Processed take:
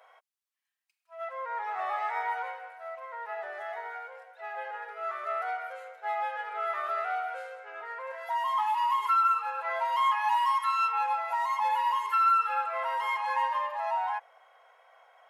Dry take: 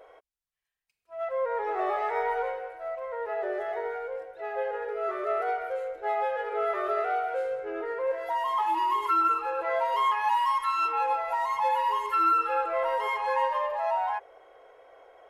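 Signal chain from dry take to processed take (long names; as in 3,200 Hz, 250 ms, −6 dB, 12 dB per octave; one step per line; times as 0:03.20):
high-pass filter 780 Hz 24 dB per octave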